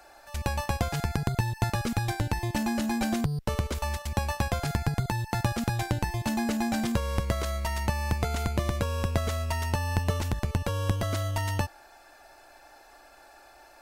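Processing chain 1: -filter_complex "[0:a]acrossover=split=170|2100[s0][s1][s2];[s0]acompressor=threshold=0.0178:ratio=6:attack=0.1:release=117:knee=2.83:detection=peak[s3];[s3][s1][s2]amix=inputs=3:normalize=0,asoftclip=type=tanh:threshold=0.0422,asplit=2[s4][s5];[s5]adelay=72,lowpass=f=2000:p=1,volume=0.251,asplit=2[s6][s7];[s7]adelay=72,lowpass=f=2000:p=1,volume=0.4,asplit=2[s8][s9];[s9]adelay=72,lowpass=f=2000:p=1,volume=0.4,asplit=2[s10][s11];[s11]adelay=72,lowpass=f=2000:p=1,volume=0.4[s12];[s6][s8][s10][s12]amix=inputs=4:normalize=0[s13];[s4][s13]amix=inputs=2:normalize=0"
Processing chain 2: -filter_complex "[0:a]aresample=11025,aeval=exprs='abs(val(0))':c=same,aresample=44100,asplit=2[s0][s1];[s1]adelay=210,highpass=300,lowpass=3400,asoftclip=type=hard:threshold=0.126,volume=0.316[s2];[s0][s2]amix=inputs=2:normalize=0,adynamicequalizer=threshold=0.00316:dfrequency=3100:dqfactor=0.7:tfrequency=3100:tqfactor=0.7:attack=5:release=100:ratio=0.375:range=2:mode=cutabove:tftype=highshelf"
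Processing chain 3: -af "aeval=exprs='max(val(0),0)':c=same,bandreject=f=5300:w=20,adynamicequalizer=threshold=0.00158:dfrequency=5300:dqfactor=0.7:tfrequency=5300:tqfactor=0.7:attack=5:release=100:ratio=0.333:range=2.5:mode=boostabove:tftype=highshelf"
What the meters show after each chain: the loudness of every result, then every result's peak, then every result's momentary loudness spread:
-34.0 LUFS, -34.0 LUFS, -34.0 LUFS; -25.0 dBFS, -10.0 dBFS, -13.5 dBFS; 21 LU, 2 LU, 3 LU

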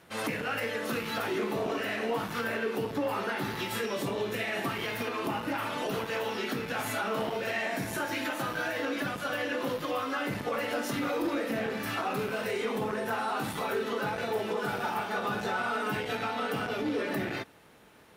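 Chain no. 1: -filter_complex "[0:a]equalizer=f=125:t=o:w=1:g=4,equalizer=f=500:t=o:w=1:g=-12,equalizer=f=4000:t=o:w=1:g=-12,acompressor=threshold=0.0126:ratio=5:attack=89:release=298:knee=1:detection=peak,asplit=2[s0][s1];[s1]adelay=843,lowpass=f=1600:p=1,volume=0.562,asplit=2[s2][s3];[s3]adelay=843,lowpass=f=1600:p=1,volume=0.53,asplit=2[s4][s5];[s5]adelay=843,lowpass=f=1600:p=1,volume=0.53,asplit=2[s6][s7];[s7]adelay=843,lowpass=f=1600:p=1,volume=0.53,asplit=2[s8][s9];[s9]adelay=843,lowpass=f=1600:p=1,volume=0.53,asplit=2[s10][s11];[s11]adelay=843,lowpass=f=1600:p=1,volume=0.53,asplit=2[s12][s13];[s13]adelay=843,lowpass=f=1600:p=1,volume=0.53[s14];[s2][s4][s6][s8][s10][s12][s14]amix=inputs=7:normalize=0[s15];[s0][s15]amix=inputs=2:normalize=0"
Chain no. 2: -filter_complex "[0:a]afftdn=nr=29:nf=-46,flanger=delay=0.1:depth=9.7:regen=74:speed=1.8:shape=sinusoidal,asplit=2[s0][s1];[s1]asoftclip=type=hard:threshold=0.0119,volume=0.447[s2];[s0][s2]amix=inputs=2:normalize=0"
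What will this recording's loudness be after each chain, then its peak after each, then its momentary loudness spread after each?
-37.0 LUFS, -34.5 LUFS; -24.0 dBFS, -23.5 dBFS; 1 LU, 2 LU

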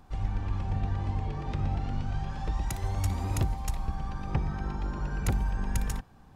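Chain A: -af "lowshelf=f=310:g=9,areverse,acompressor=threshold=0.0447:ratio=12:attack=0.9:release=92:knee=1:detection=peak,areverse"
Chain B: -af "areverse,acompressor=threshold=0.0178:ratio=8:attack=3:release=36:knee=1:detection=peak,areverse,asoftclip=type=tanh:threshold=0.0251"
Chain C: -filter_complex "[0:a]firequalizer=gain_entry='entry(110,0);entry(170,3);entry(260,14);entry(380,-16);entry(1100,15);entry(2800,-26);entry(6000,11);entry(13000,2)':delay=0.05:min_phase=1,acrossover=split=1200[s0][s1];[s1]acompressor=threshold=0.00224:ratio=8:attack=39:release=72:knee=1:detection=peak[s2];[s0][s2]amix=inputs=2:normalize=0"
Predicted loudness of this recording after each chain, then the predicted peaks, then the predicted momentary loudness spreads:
-34.5 LUFS, -42.0 LUFS, -31.0 LUFS; -24.0 dBFS, -32.5 dBFS, -11.5 dBFS; 3 LU, 2 LU, 4 LU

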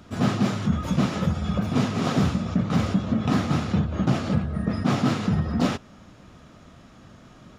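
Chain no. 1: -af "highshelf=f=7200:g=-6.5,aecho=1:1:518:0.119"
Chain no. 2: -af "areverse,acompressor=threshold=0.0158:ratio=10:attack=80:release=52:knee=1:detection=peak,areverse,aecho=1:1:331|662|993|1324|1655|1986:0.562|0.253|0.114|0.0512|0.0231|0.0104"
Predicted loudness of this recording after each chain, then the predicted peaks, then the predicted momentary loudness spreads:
-24.5 LUFS, -32.0 LUFS; -9.5 dBFS, -17.0 dBFS; 3 LU, 14 LU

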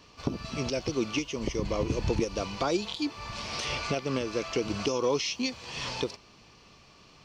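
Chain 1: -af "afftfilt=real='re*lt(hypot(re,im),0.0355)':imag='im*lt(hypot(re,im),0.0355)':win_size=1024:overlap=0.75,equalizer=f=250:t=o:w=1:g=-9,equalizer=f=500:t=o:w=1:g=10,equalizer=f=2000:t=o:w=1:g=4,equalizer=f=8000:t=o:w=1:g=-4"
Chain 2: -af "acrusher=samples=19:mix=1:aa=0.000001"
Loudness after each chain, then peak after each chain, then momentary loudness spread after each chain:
-38.5 LUFS, -31.5 LUFS; -22.0 dBFS, -14.5 dBFS; 12 LU, 7 LU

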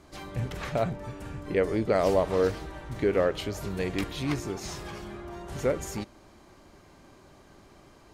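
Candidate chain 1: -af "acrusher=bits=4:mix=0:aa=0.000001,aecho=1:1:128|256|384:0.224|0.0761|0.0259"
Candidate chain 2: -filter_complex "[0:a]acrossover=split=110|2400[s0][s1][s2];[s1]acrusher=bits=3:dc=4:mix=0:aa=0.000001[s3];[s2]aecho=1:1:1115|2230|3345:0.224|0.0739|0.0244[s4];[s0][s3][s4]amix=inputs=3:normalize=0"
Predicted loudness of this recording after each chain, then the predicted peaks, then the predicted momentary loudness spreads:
-28.5 LUFS, -33.5 LUFS; -10.5 dBFS, -10.5 dBFS; 17 LU, 15 LU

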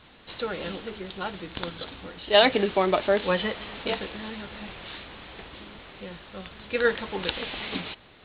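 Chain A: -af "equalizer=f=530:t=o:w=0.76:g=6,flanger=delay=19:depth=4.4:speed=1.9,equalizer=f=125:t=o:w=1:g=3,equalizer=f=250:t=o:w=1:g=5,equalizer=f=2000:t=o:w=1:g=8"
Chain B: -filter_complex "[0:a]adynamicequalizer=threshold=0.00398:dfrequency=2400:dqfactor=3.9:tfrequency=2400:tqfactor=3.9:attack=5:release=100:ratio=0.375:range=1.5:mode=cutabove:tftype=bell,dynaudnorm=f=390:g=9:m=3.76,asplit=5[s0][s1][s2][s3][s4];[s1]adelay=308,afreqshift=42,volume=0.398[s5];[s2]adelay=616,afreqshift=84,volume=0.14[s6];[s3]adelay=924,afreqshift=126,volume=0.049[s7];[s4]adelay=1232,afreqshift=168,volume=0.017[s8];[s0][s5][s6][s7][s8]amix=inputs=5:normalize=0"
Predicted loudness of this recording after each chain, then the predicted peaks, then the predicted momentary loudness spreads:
-24.5 LUFS, -23.0 LUFS; -4.5 dBFS, -1.5 dBFS; 19 LU, 17 LU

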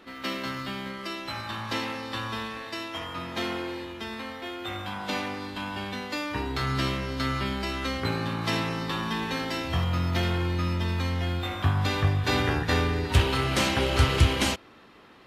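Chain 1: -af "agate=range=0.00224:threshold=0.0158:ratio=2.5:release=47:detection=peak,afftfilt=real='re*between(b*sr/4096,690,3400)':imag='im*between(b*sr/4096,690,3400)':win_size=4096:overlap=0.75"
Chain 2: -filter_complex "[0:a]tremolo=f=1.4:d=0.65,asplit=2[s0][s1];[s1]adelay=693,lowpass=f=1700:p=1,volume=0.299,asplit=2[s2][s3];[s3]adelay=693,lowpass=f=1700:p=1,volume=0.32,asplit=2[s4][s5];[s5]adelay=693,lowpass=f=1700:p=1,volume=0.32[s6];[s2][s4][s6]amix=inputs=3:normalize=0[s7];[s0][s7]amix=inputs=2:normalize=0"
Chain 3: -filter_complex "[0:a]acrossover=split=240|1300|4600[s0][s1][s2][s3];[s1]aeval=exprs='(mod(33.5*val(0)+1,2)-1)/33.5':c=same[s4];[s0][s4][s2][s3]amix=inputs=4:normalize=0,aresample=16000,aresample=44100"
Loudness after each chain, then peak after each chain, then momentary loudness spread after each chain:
-33.0 LUFS, -31.0 LUFS, -29.0 LUFS; -15.5 dBFS, -8.0 dBFS, -8.5 dBFS; 10 LU, 12 LU, 10 LU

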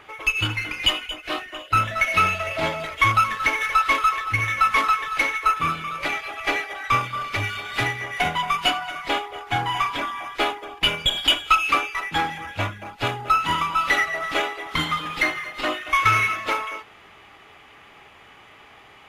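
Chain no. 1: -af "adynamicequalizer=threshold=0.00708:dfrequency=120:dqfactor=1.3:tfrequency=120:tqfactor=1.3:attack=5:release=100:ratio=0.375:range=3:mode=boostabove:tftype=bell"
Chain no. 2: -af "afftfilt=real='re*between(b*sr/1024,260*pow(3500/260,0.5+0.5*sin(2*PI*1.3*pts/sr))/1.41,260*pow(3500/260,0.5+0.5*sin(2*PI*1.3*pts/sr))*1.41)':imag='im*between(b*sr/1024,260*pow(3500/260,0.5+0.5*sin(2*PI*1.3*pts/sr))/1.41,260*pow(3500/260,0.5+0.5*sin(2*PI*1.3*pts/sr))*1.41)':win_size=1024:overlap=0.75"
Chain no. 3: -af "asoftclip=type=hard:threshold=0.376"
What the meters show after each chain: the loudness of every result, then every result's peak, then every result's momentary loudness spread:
-22.0 LUFS, -28.5 LUFS, -22.0 LUFS; -5.0 dBFS, -7.5 dBFS, -8.5 dBFS; 9 LU, 14 LU, 9 LU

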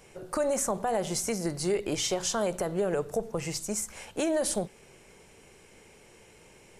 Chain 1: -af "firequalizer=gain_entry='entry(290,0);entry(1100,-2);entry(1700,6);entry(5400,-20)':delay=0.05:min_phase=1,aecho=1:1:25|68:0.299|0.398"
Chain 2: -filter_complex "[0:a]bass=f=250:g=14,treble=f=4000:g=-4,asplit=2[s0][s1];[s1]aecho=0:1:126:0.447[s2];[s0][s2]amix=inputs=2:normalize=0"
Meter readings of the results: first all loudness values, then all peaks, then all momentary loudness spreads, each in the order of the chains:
-31.0 LUFS, -26.5 LUFS; -16.0 dBFS, -11.5 dBFS; 8 LU, 6 LU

